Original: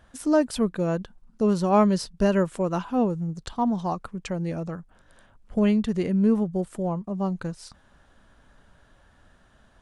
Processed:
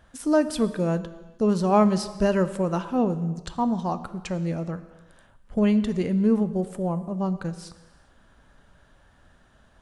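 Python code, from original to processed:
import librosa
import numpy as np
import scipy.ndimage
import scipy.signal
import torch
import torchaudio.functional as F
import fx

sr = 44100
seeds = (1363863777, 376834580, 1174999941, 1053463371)

y = fx.rev_gated(x, sr, seeds[0], gate_ms=450, shape='falling', drr_db=11.5)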